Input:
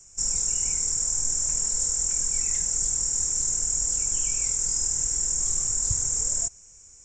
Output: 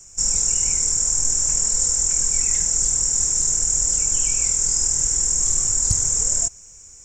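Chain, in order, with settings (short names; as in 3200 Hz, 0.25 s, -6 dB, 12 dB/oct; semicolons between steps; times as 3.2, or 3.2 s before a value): companded quantiser 8-bit; Doppler distortion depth 0.55 ms; gain +6.5 dB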